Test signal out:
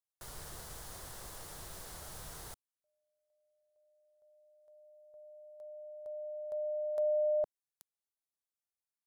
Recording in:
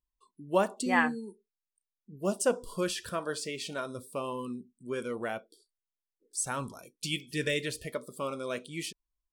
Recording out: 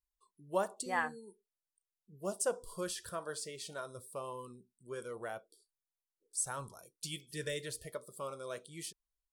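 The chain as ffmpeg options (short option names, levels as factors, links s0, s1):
-af "equalizer=f=250:t=o:w=0.67:g=-12,equalizer=f=2500:t=o:w=0.67:g=-9,equalizer=f=10000:t=o:w=0.67:g=5,volume=0.531"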